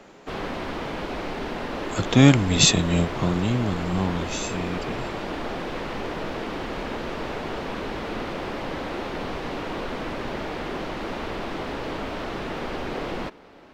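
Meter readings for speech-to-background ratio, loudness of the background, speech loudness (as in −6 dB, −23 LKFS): 10.0 dB, −31.5 LKFS, −21.5 LKFS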